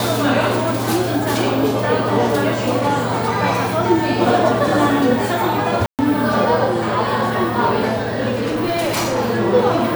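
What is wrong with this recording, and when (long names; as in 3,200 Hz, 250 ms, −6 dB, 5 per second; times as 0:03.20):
0:05.86–0:05.99: drop-out 128 ms
0:08.35–0:09.19: clipping −15.5 dBFS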